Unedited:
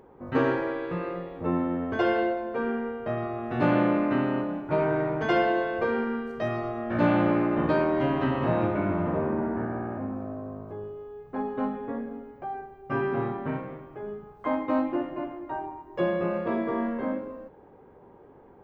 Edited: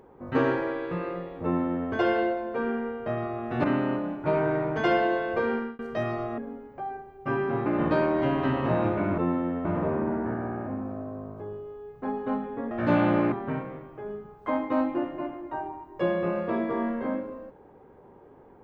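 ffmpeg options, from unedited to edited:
ffmpeg -i in.wav -filter_complex "[0:a]asplit=9[link_01][link_02][link_03][link_04][link_05][link_06][link_07][link_08][link_09];[link_01]atrim=end=3.642[link_10];[link_02]atrim=start=4.088:end=6.24,asetpts=PTS-STARTPTS,afade=type=out:start_time=1.852:duration=0.3:curve=qsin[link_11];[link_03]atrim=start=6.24:end=6.832,asetpts=PTS-STARTPTS,afade=type=in:duration=0.004:curve=hsin[link_12];[link_04]atrim=start=12.018:end=13.302[link_13];[link_05]atrim=start=7.438:end=8.962[link_14];[link_06]atrim=start=1.438:end=1.912[link_15];[link_07]atrim=start=8.958:end=12.022[link_16];[link_08]atrim=start=6.828:end=7.442[link_17];[link_09]atrim=start=13.298[link_18];[link_11][link_12]concat=n=2:v=0:a=1[link_19];[link_10][link_19]acrossfade=duration=0.004:curve1=hsin:curve2=hsin[link_20];[link_20][link_13]acrossfade=duration=0.004:curve1=hsin:curve2=hsin[link_21];[link_21][link_14]acrossfade=duration=0.004:curve1=hsin:curve2=hsin[link_22];[link_22][link_15]acrossfade=duration=0.004:curve1=hsin:curve2=hsin[link_23];[link_23][link_16]acrossfade=duration=0.004:curve1=hsin:curve2=hsin[link_24];[link_24][link_17]acrossfade=duration=0.004:curve1=hsin:curve2=hsin[link_25];[link_25][link_18]acrossfade=duration=0.004:curve1=hsin:curve2=hsin" out.wav

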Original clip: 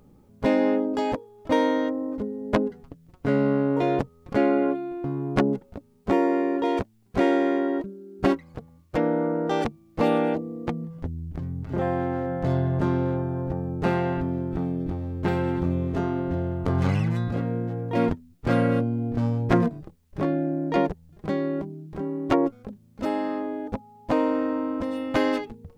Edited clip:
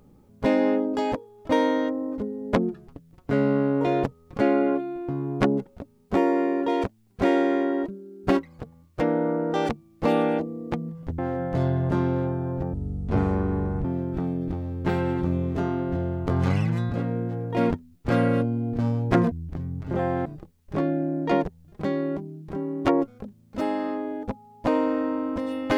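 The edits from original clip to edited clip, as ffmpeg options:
ffmpeg -i in.wav -filter_complex "[0:a]asplit=8[link_01][link_02][link_03][link_04][link_05][link_06][link_07][link_08];[link_01]atrim=end=2.564[link_09];[link_02]atrim=start=2.56:end=2.83,asetpts=PTS-STARTPTS,asetrate=37926,aresample=44100,atrim=end_sample=13845,asetpts=PTS-STARTPTS[link_10];[link_03]atrim=start=2.826:end=11.142[link_11];[link_04]atrim=start=12.078:end=13.634[link_12];[link_05]atrim=start=13.63:end=14.23,asetpts=PTS-STARTPTS,asetrate=23814,aresample=44100[link_13];[link_06]atrim=start=14.226:end=19.702[link_14];[link_07]atrim=start=11.138:end=12.082[link_15];[link_08]atrim=start=19.698[link_16];[link_09][link_10]acrossfade=duration=0.004:curve1=hsin:curve2=hsin[link_17];[link_17][link_11]acrossfade=duration=0.004:curve1=hsin:curve2=hsin[link_18];[link_18][link_12]acrossfade=duration=0.004:curve1=hsin:curve2=hsin[link_19];[link_19][link_13]acrossfade=duration=0.004:curve1=hsin:curve2=hsin[link_20];[link_20][link_14]acrossfade=duration=0.004:curve1=hsin:curve2=hsin[link_21];[link_21][link_15]acrossfade=duration=0.004:curve1=hsin:curve2=hsin[link_22];[link_22][link_16]acrossfade=duration=0.004:curve1=hsin:curve2=hsin" out.wav

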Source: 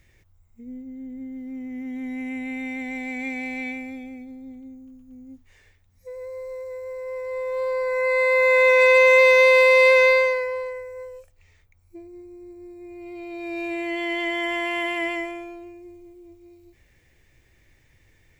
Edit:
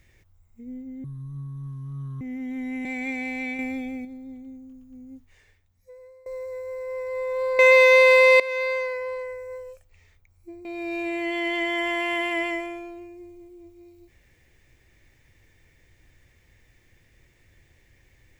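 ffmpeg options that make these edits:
ffmpeg -i in.wav -filter_complex "[0:a]asplit=10[link_01][link_02][link_03][link_04][link_05][link_06][link_07][link_08][link_09][link_10];[link_01]atrim=end=1.044[link_11];[link_02]atrim=start=1.04:end=1.66,asetpts=PTS-STARTPTS,asetrate=23373,aresample=44100[link_12];[link_03]atrim=start=1.656:end=2.302[link_13];[link_04]atrim=start=3.028:end=3.772[link_14];[link_05]atrim=start=3.768:end=4.232,asetpts=PTS-STARTPTS,volume=5dB[link_15];[link_06]atrim=start=4.228:end=6.44,asetpts=PTS-STARTPTS,afade=type=out:start_time=1.042:duration=1.17:silence=0.0891251[link_16];[link_07]atrim=start=6.44:end=7.772,asetpts=PTS-STARTPTS,afade=type=in:duration=0.004:curve=hsin:silence=0.0891251[link_17];[link_08]atrim=start=9.058:end=9.87,asetpts=PTS-STARTPTS,afade=type=out:start_time=0.808:duration=0.004:curve=hsin:silence=0.11885[link_18];[link_09]atrim=start=9.87:end=12.122,asetpts=PTS-STARTPTS,afade=type=in:duration=0.98:silence=0.11885[link_19];[link_10]atrim=start=13.298[link_20];[link_11][link_12]acrossfade=duration=0.004:curve1=hsin:curve2=hsin[link_21];[link_21][link_13]acrossfade=duration=0.004:curve1=hsin:curve2=hsin[link_22];[link_22][link_14]acrossfade=duration=0.004:curve1=hsin:curve2=hsin[link_23];[link_23][link_15]acrossfade=duration=0.004:curve1=hsin:curve2=hsin[link_24];[link_16][link_17]concat=n=2:v=0:a=1[link_25];[link_24][link_25]acrossfade=duration=0.004:curve1=hsin:curve2=hsin[link_26];[link_18][link_19]concat=n=2:v=0:a=1[link_27];[link_26][link_27]acrossfade=duration=0.004:curve1=hsin:curve2=hsin[link_28];[link_28][link_20]acrossfade=duration=0.004:curve1=hsin:curve2=hsin" out.wav

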